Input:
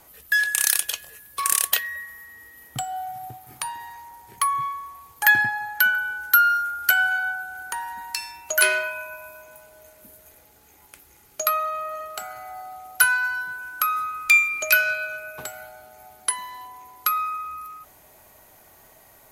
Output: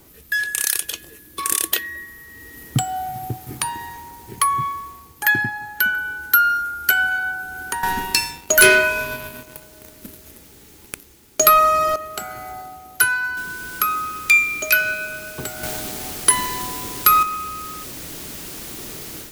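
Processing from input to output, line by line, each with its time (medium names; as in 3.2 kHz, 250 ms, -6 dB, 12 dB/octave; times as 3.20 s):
0.91–2.10 s: small resonant body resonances 320/3500 Hz, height 11 dB
7.83–11.96 s: waveshaping leveller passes 3
13.37 s: noise floor step -56 dB -42 dB
15.63–17.23 s: waveshaping leveller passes 2
whole clip: resonant low shelf 490 Hz +9 dB, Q 1.5; level rider gain up to 8 dB; trim -1 dB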